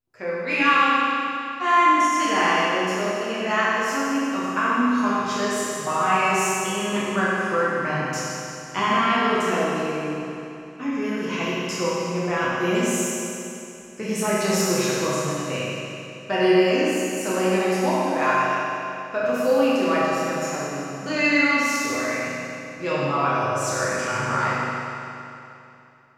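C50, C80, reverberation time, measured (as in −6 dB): −4.5 dB, −2.5 dB, 2.9 s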